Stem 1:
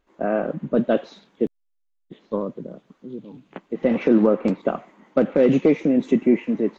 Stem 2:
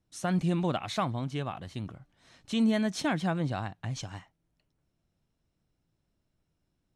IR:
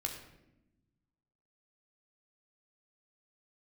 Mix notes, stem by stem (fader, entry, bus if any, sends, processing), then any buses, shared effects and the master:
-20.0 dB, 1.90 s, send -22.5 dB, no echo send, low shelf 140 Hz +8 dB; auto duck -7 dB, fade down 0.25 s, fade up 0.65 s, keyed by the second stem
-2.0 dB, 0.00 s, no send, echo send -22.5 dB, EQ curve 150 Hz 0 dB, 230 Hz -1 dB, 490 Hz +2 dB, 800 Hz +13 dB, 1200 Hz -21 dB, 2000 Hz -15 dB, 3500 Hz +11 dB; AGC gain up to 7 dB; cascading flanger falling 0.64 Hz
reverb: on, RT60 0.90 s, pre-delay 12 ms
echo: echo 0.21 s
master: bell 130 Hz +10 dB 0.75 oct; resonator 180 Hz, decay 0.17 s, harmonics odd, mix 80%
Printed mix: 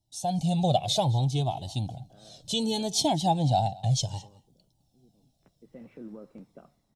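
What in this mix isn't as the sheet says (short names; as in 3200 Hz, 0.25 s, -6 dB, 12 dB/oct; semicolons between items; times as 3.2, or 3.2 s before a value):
stem 1 -20.0 dB -> -30.0 dB; master: missing resonator 180 Hz, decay 0.17 s, harmonics odd, mix 80%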